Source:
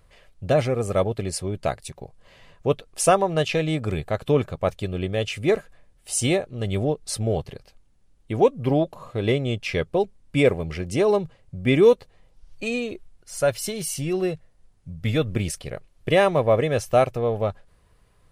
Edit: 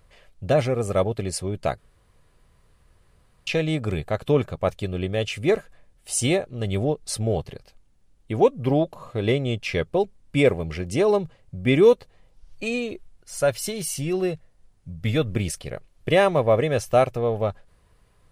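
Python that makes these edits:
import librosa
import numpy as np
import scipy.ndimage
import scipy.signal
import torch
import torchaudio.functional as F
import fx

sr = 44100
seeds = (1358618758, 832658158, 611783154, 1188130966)

y = fx.edit(x, sr, fx.room_tone_fill(start_s=1.78, length_s=1.69), tone=tone)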